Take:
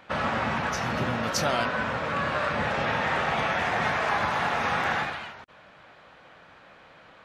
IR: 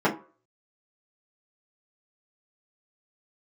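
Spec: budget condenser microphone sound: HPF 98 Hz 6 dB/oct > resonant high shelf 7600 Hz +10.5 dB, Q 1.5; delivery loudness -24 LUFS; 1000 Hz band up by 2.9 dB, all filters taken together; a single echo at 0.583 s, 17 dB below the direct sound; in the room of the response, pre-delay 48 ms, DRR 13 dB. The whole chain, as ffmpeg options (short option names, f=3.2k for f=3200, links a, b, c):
-filter_complex "[0:a]equalizer=f=1k:t=o:g=4,aecho=1:1:583:0.141,asplit=2[a][b];[1:a]atrim=start_sample=2205,adelay=48[c];[b][c]afir=irnorm=-1:irlink=0,volume=-29dB[d];[a][d]amix=inputs=2:normalize=0,highpass=f=98:p=1,highshelf=f=7.6k:t=q:w=1.5:g=10.5,volume=0.5dB"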